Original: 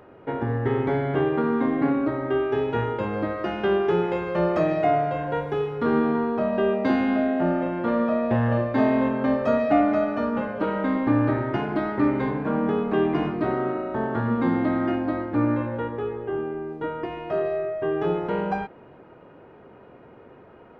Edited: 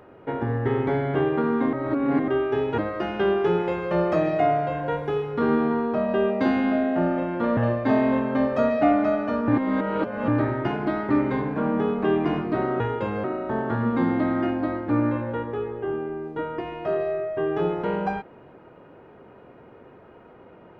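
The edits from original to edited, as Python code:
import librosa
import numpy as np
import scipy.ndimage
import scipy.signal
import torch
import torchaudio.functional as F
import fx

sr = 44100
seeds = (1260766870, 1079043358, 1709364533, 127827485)

y = fx.edit(x, sr, fx.reverse_span(start_s=1.73, length_s=0.55),
    fx.move(start_s=2.78, length_s=0.44, to_s=13.69),
    fx.cut(start_s=8.01, length_s=0.45),
    fx.reverse_span(start_s=10.37, length_s=0.8), tone=tone)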